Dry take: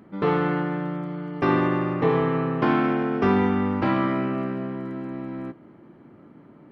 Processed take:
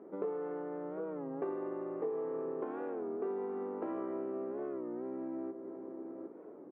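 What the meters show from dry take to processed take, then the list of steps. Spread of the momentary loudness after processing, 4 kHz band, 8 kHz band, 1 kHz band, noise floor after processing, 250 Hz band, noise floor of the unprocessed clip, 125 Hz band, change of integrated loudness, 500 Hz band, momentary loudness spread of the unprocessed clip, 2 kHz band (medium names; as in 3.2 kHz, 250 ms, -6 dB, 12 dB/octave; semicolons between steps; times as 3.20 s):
8 LU, under -35 dB, no reading, -19.5 dB, -51 dBFS, -17.0 dB, -50 dBFS, -29.0 dB, -15.5 dB, -10.5 dB, 11 LU, -26.0 dB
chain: ladder band-pass 480 Hz, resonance 50%; echo from a far wall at 130 m, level -12 dB; compression 5:1, threshold -48 dBFS, peak gain reduction 21 dB; hum notches 50/100/150/200/250/300/350 Hz; warped record 33 1/3 rpm, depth 160 cents; trim +11 dB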